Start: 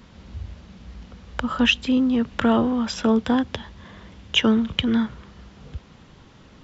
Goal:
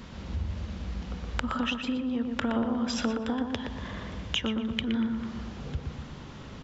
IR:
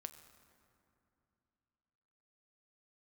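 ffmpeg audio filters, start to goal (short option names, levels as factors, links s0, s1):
-filter_complex "[0:a]acompressor=threshold=0.0251:ratio=10,asplit=2[s0][s1];[s1]adelay=119,lowpass=f=1900:p=1,volume=0.631,asplit=2[s2][s3];[s3]adelay=119,lowpass=f=1900:p=1,volume=0.54,asplit=2[s4][s5];[s5]adelay=119,lowpass=f=1900:p=1,volume=0.54,asplit=2[s6][s7];[s7]adelay=119,lowpass=f=1900:p=1,volume=0.54,asplit=2[s8][s9];[s9]adelay=119,lowpass=f=1900:p=1,volume=0.54,asplit=2[s10][s11];[s11]adelay=119,lowpass=f=1900:p=1,volume=0.54,asplit=2[s12][s13];[s13]adelay=119,lowpass=f=1900:p=1,volume=0.54[s14];[s0][s2][s4][s6][s8][s10][s12][s14]amix=inputs=8:normalize=0,asplit=2[s15][s16];[1:a]atrim=start_sample=2205[s17];[s16][s17]afir=irnorm=-1:irlink=0,volume=0.473[s18];[s15][s18]amix=inputs=2:normalize=0,volume=1.26"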